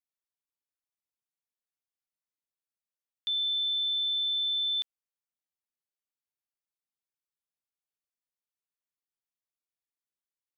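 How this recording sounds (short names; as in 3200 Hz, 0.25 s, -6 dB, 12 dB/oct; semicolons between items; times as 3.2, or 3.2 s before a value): noise floor -95 dBFS; spectral tilt 0.0 dB/oct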